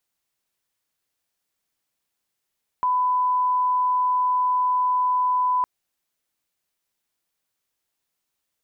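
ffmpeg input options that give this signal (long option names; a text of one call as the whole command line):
ffmpeg -f lavfi -i "sine=frequency=1000:duration=2.81:sample_rate=44100,volume=0.06dB" out.wav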